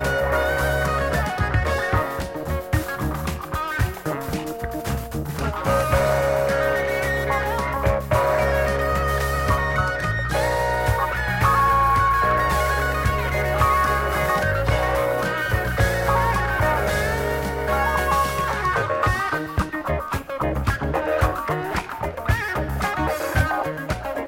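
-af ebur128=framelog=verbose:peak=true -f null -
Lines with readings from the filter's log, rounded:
Integrated loudness:
  I:         -21.9 LUFS
  Threshold: -31.9 LUFS
Loudness range:
  LRA:         4.7 LU
  Threshold: -41.8 LUFS
  LRA low:   -24.5 LUFS
  LRA high:  -19.7 LUFS
True peak:
  Peak:       -6.0 dBFS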